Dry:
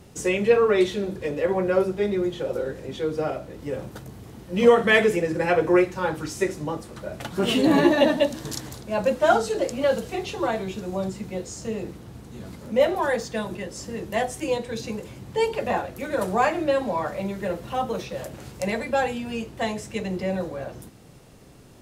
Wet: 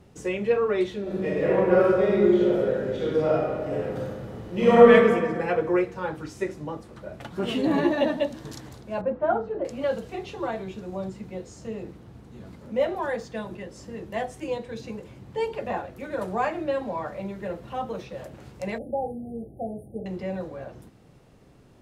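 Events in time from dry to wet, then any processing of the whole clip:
0:01.02–0:04.90: thrown reverb, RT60 1.8 s, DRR −7 dB
0:09.01–0:09.65: low-pass filter 1,300 Hz
0:18.78–0:20.06: linear-phase brick-wall band-stop 840–8,900 Hz
whole clip: high-shelf EQ 4,600 Hz −11 dB; level −4.5 dB

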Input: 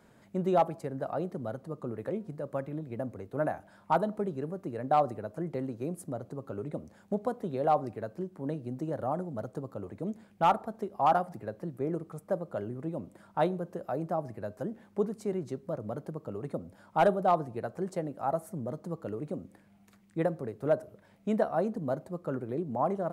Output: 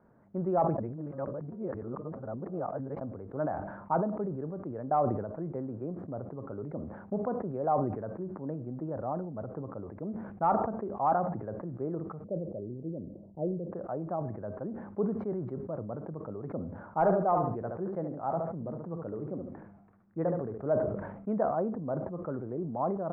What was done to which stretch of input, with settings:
0:00.78–0:03.01: reverse
0:12.24–0:13.72: Butterworth low-pass 570 Hz
0:16.65–0:20.58: repeating echo 72 ms, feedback 23%, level −8 dB
whole clip: low-pass filter 1,400 Hz 24 dB per octave; level that may fall only so fast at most 49 dB per second; level −2.5 dB

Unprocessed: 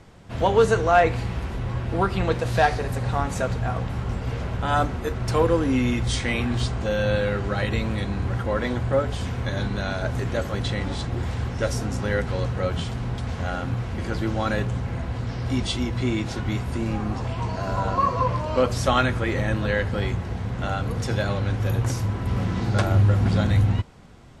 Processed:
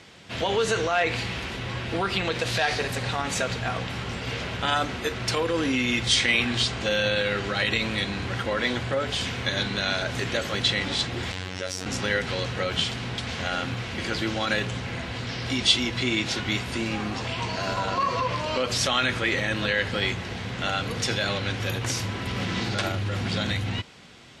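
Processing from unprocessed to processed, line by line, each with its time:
0:11.32–0:11.86: phases set to zero 92.7 Hz
whole clip: brickwall limiter −16.5 dBFS; meter weighting curve D

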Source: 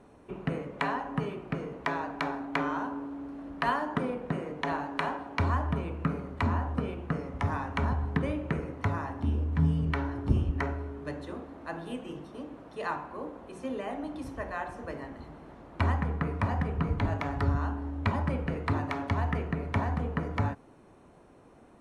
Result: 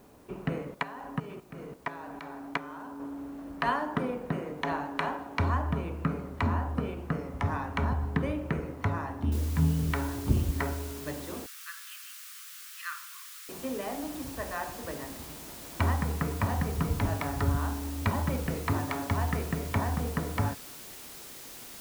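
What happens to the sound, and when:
0:00.74–0:03.00: output level in coarse steps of 14 dB
0:09.32: noise floor change −67 dB −46 dB
0:11.46–0:13.49: Butterworth high-pass 1,200 Hz 72 dB per octave

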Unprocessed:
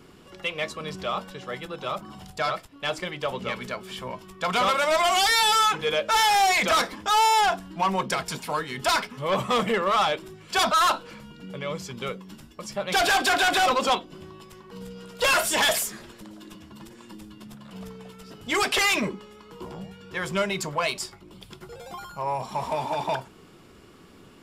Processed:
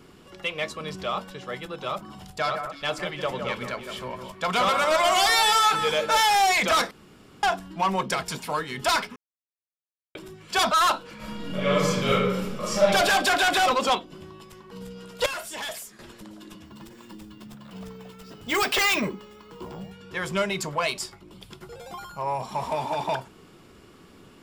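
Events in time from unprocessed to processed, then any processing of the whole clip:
0:02.33–0:06.21: delay that swaps between a low-pass and a high-pass 162 ms, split 2,000 Hz, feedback 50%, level −6.5 dB
0:06.91–0:07.43: fill with room tone
0:09.16–0:10.15: silence
0:11.16–0:12.81: thrown reverb, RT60 1.2 s, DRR −10.5 dB
0:15.26–0:15.99: clip gain −12 dB
0:16.65–0:19.92: bad sample-rate conversion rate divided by 2×, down filtered, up hold

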